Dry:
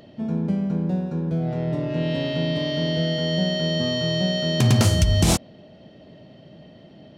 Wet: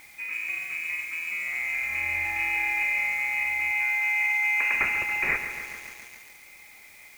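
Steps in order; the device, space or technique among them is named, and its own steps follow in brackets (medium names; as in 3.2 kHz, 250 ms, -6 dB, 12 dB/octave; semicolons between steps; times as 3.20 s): high-pass 61 Hz 12 dB/octave; scrambled radio voice (band-pass 350–2700 Hz; frequency inversion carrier 2.7 kHz; white noise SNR 24 dB); 2.22–2.83 s: doubling 30 ms -2 dB; 3.71–4.74 s: high-pass 560 Hz 12 dB/octave; bit-crushed delay 140 ms, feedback 80%, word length 7-bit, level -9 dB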